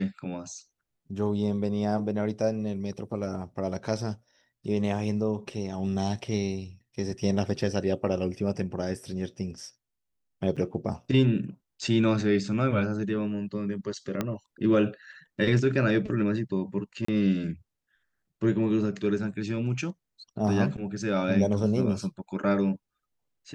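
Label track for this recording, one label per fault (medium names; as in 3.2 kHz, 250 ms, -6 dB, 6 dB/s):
10.560000	10.570000	dropout 6.3 ms
14.210000	14.210000	pop -14 dBFS
17.050000	17.080000	dropout 34 ms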